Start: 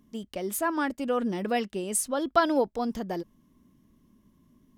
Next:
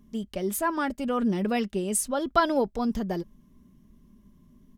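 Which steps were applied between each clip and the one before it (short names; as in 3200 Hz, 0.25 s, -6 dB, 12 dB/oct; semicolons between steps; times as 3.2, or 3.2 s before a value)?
low shelf 130 Hz +11 dB; comb 5 ms, depth 35%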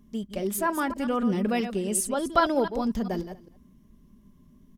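reverse delay 0.134 s, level -9.5 dB; echo 0.239 s -24 dB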